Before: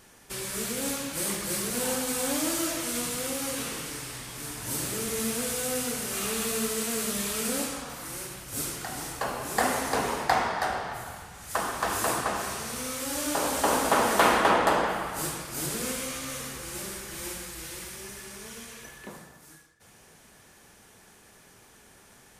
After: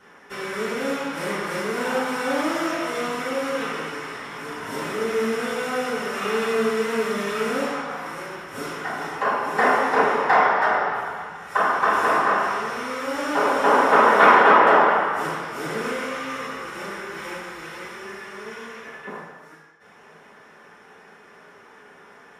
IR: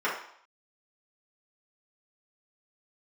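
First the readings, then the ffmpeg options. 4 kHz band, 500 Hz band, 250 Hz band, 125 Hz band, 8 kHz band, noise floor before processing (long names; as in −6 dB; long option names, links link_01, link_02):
−0.5 dB, +8.5 dB, +4.5 dB, −0.5 dB, −11.0 dB, −55 dBFS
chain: -filter_complex "[0:a]highshelf=frequency=7200:gain=-11,asplit=2[link_01][link_02];[link_02]asoftclip=type=tanh:threshold=-20.5dB,volume=-5.5dB[link_03];[link_01][link_03]amix=inputs=2:normalize=0[link_04];[1:a]atrim=start_sample=2205[link_05];[link_04][link_05]afir=irnorm=-1:irlink=0,volume=-6dB"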